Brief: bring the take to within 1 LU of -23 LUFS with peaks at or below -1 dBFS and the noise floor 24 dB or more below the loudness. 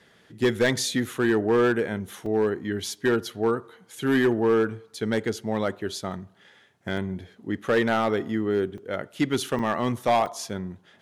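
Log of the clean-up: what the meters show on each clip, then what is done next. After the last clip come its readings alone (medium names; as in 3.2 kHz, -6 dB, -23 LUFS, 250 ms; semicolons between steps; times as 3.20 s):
clipped samples 1.1%; clipping level -15.0 dBFS; dropouts 5; longest dropout 3.4 ms; loudness -25.5 LUFS; peak level -15.0 dBFS; loudness target -23.0 LUFS
-> clip repair -15 dBFS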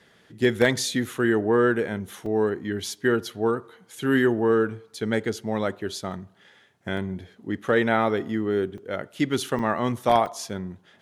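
clipped samples 0.0%; dropouts 5; longest dropout 3.4 ms
-> interpolate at 2.26/6.97/8.78/9.59/10.26 s, 3.4 ms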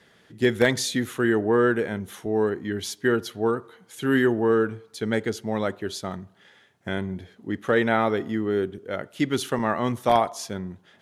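dropouts 0; loudness -25.0 LUFS; peak level -6.0 dBFS; loudness target -23.0 LUFS
-> trim +2 dB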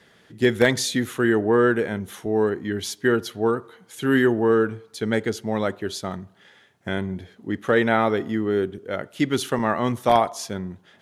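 loudness -23.0 LUFS; peak level -4.0 dBFS; noise floor -57 dBFS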